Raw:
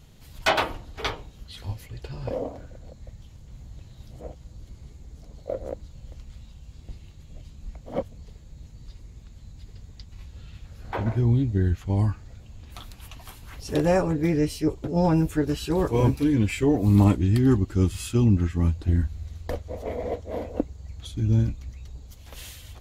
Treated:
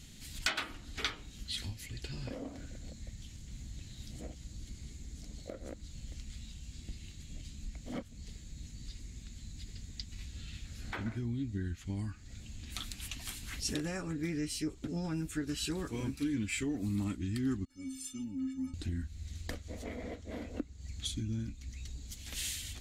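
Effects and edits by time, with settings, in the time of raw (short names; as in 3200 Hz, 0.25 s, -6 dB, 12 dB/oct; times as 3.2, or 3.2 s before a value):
17.65–18.74 metallic resonator 260 Hz, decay 0.43 s, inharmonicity 0.03
19.84–20.81 high shelf 5000 Hz -5.5 dB
whole clip: dynamic EQ 1300 Hz, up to +8 dB, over -50 dBFS, Q 2.4; compressor 3:1, threshold -36 dBFS; ten-band EQ 125 Hz -3 dB, 250 Hz +7 dB, 500 Hz -7 dB, 1000 Hz -8 dB, 2000 Hz +6 dB, 4000 Hz +5 dB, 8000 Hz +11 dB; gain -2 dB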